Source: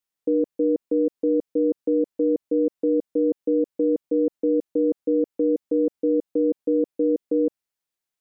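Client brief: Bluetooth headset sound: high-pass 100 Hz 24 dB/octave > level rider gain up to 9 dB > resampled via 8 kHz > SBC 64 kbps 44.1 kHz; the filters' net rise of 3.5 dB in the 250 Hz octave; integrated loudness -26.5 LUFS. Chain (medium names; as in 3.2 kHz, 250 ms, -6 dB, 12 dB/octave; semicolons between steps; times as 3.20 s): high-pass 100 Hz 24 dB/octave; peaking EQ 250 Hz +4.5 dB; level rider gain up to 9 dB; resampled via 8 kHz; trim -5.5 dB; SBC 64 kbps 44.1 kHz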